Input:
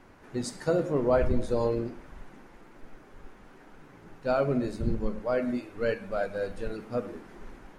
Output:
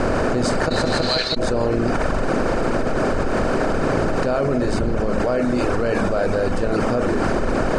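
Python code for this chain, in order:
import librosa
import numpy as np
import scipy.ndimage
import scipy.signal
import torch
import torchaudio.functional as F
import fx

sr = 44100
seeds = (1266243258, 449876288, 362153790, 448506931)

y = fx.bin_compress(x, sr, power=0.4)
y = fx.dereverb_blind(y, sr, rt60_s=0.84)
y = fx.bandpass_q(y, sr, hz=4100.0, q=18.0, at=(0.68, 1.36), fade=0.02)
y = fx.dmg_crackle(y, sr, seeds[0], per_s=40.0, level_db=-40.0, at=(2.27, 4.19), fade=0.02)
y = fx.air_absorb(y, sr, metres=56.0)
y = fx.echo_feedback(y, sr, ms=162, feedback_pct=48, wet_db=-20.5)
y = fx.env_flatten(y, sr, amount_pct=100)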